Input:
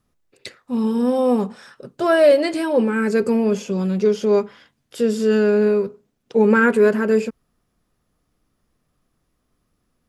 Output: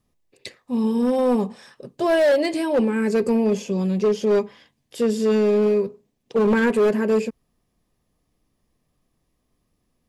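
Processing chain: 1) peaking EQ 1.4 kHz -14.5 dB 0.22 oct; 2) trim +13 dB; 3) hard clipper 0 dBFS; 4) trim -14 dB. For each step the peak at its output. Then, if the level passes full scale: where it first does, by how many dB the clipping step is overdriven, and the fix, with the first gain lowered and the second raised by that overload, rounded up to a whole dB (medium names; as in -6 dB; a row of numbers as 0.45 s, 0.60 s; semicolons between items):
-4.0 dBFS, +9.0 dBFS, 0.0 dBFS, -14.0 dBFS; step 2, 9.0 dB; step 2 +4 dB, step 4 -5 dB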